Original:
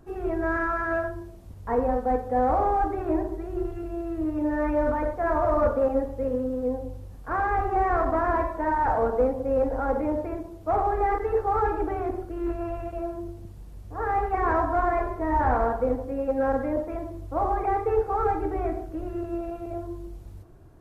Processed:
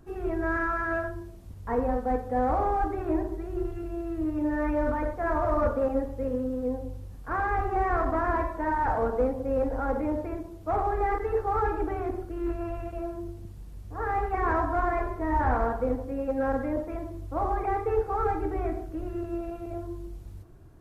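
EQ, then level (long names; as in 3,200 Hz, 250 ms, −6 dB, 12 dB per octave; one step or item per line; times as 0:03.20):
parametric band 640 Hz −4 dB 1.6 octaves
0.0 dB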